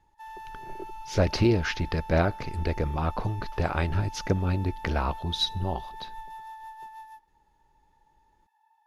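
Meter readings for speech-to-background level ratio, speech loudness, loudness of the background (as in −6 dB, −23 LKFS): 15.0 dB, −28.0 LKFS, −43.0 LKFS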